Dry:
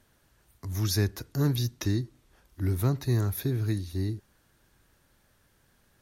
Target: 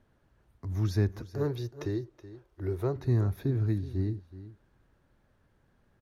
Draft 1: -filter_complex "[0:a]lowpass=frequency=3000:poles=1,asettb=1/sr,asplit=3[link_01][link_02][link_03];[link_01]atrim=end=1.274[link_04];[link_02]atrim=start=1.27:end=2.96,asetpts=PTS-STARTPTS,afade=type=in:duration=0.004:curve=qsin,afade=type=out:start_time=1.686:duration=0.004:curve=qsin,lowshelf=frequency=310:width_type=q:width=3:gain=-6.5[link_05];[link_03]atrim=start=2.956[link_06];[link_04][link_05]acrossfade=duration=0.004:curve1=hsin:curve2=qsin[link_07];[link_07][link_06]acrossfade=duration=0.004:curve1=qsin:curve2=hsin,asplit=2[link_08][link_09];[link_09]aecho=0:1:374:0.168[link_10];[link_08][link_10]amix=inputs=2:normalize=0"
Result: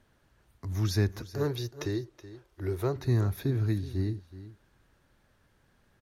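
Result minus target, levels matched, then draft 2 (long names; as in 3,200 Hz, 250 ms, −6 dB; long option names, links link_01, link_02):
4,000 Hz band +8.0 dB
-filter_complex "[0:a]lowpass=frequency=970:poles=1,asettb=1/sr,asplit=3[link_01][link_02][link_03];[link_01]atrim=end=1.274[link_04];[link_02]atrim=start=1.27:end=2.96,asetpts=PTS-STARTPTS,afade=type=in:duration=0.004:curve=qsin,afade=type=out:start_time=1.686:duration=0.004:curve=qsin,lowshelf=frequency=310:width_type=q:width=3:gain=-6.5[link_05];[link_03]atrim=start=2.956[link_06];[link_04][link_05]acrossfade=duration=0.004:curve1=hsin:curve2=qsin[link_07];[link_07][link_06]acrossfade=duration=0.004:curve1=qsin:curve2=hsin,asplit=2[link_08][link_09];[link_09]aecho=0:1:374:0.168[link_10];[link_08][link_10]amix=inputs=2:normalize=0"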